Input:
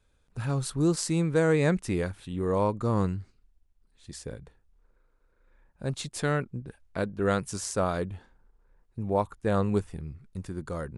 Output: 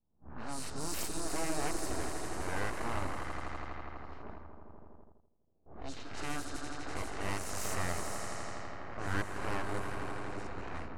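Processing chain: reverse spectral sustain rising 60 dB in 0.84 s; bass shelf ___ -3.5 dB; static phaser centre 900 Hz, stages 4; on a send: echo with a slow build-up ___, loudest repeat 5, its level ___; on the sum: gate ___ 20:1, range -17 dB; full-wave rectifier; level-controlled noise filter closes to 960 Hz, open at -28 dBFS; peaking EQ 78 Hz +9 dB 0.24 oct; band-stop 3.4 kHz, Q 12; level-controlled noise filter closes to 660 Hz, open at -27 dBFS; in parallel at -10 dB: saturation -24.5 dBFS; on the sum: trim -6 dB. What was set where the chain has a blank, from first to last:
280 Hz, 82 ms, -11 dB, -47 dBFS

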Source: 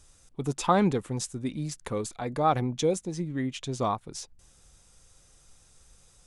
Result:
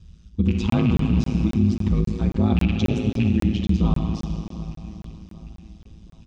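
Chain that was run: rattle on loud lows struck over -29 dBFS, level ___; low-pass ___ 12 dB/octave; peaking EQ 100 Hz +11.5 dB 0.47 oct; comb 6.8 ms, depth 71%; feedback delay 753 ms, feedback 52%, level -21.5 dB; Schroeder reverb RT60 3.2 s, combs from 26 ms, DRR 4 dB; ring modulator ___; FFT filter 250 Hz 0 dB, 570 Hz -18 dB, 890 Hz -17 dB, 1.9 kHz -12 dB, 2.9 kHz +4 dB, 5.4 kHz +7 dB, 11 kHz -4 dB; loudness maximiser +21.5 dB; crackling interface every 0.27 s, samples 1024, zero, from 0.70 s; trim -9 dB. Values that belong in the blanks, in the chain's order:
-18 dBFS, 1.5 kHz, 55 Hz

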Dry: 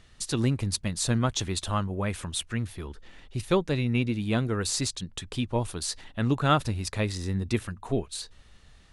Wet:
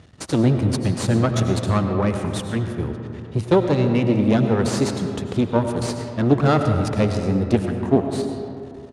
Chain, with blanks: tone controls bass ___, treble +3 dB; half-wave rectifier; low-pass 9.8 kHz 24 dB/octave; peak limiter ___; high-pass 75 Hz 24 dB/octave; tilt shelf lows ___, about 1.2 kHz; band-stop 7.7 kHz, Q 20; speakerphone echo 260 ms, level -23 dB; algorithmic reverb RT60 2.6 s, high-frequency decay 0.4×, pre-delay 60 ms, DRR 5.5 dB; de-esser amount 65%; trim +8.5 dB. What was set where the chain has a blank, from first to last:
0 dB, -15 dBFS, +7.5 dB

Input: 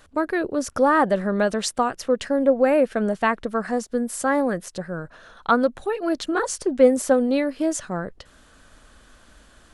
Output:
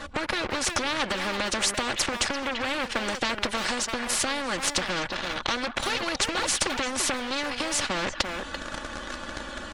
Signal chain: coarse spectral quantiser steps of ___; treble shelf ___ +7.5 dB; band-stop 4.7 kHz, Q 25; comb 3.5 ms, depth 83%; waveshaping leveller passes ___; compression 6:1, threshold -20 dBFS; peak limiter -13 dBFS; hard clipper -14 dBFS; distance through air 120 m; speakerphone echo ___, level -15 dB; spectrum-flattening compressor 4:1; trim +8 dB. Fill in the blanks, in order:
15 dB, 8.6 kHz, 2, 340 ms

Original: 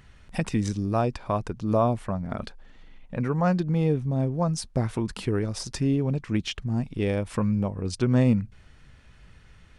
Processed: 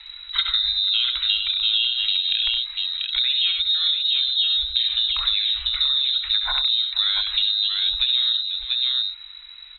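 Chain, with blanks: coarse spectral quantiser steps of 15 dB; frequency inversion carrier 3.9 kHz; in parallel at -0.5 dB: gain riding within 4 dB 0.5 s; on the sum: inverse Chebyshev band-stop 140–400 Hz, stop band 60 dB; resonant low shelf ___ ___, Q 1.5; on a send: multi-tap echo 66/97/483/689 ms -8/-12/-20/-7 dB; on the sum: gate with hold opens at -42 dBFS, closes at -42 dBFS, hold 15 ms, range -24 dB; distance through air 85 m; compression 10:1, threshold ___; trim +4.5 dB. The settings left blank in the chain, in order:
560 Hz, +12.5 dB, -22 dBFS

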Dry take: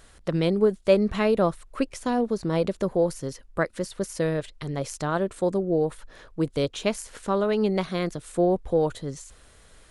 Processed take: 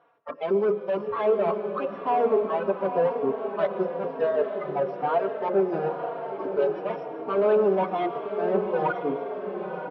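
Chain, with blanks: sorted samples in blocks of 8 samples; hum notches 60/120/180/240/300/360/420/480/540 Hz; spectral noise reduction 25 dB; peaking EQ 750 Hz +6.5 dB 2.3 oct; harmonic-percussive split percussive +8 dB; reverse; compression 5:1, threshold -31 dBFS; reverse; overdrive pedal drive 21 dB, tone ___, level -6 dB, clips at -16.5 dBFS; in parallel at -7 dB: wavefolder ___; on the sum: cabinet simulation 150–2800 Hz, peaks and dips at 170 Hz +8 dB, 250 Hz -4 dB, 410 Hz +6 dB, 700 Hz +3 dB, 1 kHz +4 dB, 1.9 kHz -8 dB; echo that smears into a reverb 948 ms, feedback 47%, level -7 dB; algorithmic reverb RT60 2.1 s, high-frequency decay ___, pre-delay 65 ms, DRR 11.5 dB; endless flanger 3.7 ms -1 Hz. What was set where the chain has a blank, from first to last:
1.7 kHz, -26 dBFS, 1×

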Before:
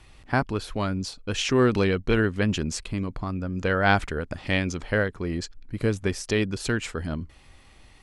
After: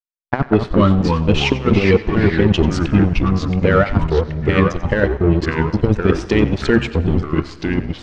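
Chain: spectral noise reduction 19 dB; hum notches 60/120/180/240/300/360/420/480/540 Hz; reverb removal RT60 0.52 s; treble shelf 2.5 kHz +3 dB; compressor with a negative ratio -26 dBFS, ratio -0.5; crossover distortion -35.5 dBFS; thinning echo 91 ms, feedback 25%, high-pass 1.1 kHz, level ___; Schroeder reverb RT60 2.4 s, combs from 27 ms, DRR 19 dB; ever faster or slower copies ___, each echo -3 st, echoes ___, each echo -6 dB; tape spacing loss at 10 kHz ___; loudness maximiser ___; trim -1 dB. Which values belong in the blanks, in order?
-14.5 dB, 134 ms, 2, 38 dB, +20.5 dB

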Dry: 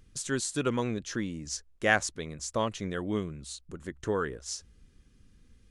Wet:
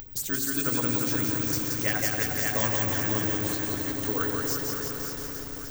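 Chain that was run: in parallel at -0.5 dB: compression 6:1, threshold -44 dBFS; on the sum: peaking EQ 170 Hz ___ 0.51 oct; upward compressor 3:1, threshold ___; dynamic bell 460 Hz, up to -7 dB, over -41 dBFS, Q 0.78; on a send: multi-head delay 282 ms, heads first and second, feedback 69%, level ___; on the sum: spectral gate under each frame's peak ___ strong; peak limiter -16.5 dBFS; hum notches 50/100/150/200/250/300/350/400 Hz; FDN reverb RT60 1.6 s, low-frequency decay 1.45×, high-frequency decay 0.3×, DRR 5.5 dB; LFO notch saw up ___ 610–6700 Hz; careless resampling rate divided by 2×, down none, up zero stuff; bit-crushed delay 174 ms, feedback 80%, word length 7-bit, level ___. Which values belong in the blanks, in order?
-5.5 dB, -41 dBFS, -11 dB, -55 dB, 8.5 Hz, -3 dB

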